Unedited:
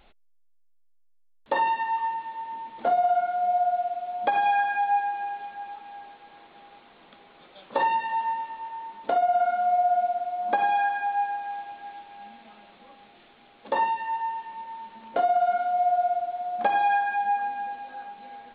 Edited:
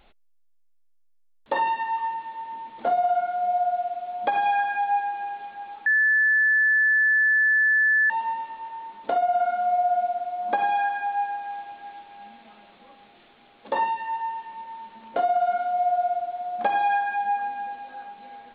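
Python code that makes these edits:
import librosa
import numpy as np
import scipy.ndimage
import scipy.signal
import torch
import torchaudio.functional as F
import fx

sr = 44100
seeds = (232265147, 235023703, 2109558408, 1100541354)

y = fx.edit(x, sr, fx.bleep(start_s=5.86, length_s=2.24, hz=1740.0, db=-16.5), tone=tone)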